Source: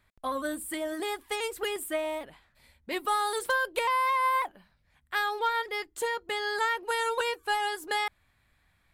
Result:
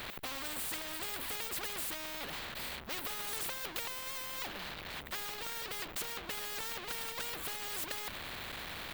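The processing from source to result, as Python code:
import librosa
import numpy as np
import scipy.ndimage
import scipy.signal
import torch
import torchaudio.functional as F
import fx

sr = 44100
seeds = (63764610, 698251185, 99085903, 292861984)

y = fx.power_curve(x, sr, exponent=0.35)
y = fx.band_shelf(y, sr, hz=7900.0, db=-14.0, octaves=1.7)
y = fx.spectral_comp(y, sr, ratio=4.0)
y = y * 10.0 ** (-5.0 / 20.0)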